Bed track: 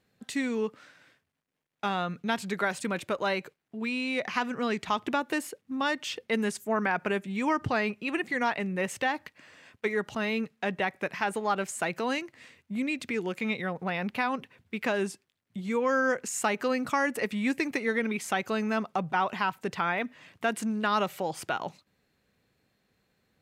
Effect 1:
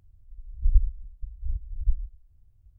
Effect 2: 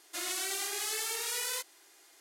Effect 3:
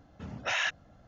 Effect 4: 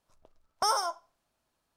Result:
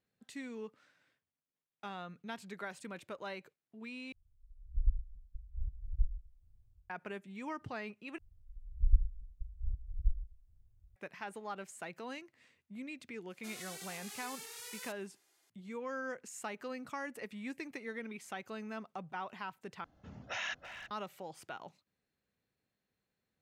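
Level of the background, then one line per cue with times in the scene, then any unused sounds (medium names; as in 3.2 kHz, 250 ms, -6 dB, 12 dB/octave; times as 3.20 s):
bed track -14.5 dB
4.12 s: replace with 1 -16 dB + level rider
8.18 s: replace with 1 -7 dB
13.30 s: add 2 -13 dB
19.84 s: replace with 3 -9 dB + speakerphone echo 330 ms, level -8 dB
not used: 4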